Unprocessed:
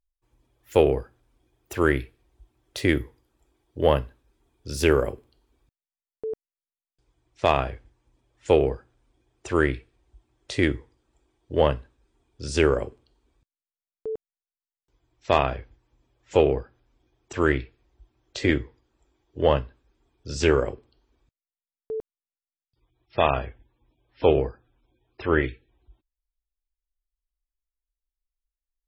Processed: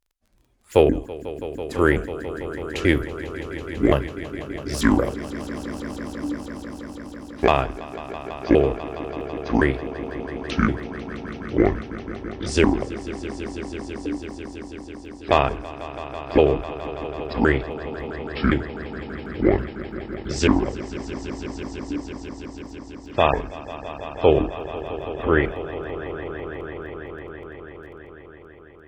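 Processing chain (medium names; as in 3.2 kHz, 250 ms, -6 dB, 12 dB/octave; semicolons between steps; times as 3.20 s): pitch shift switched off and on -7 st, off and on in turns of 178 ms; on a send: echo with a slow build-up 165 ms, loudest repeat 5, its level -16.5 dB; on the sum: crackle 14 per s -50 dBFS; trim +3 dB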